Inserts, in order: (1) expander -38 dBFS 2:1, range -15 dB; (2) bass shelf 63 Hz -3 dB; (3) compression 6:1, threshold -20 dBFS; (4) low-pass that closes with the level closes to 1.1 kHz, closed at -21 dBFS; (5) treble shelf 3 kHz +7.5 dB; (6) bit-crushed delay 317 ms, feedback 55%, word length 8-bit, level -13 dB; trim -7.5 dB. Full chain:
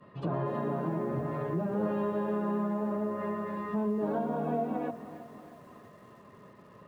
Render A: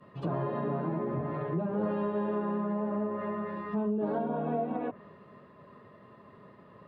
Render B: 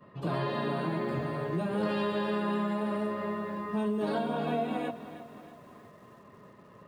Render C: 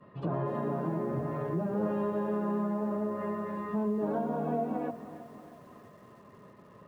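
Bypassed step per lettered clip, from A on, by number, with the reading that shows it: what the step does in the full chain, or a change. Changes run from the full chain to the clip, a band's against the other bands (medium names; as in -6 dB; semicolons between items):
6, momentary loudness spread change -10 LU; 4, 2 kHz band +7.0 dB; 5, 2 kHz band -1.5 dB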